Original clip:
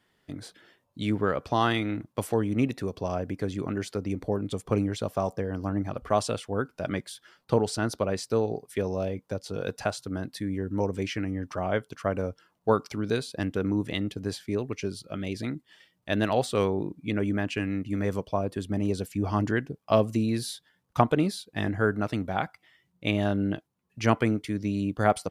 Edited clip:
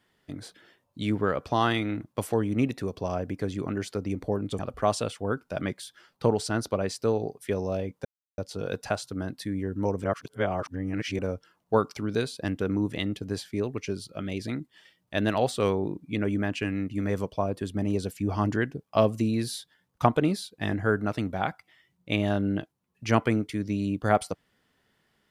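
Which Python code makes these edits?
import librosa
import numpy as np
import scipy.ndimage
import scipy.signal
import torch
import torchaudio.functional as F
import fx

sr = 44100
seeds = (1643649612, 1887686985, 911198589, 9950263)

y = fx.edit(x, sr, fx.cut(start_s=4.59, length_s=1.28),
    fx.insert_silence(at_s=9.33, length_s=0.33),
    fx.reverse_span(start_s=10.99, length_s=1.15), tone=tone)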